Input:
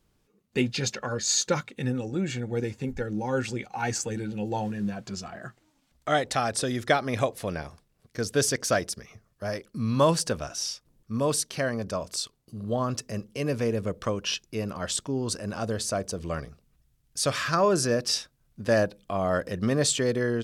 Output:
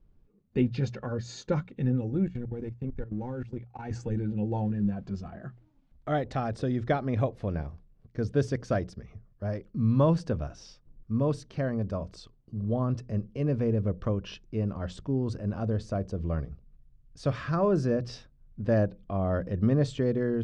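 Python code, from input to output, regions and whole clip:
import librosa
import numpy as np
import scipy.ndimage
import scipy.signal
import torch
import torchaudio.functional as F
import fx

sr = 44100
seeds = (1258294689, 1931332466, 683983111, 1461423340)

y = fx.chain(x, sr, fx.law_mismatch(coded='A'),
    fx.level_steps(step_db=17), at=(2.26, 3.91))
y = scipy.signal.sosfilt(scipy.signal.butter(2, 5500.0, 'lowpass', fs=sr, output='sos'), y)
y = fx.tilt_eq(y, sr, slope=-4.0)
y = fx.hum_notches(y, sr, base_hz=60, count=3)
y = F.gain(torch.from_numpy(y), -7.0).numpy()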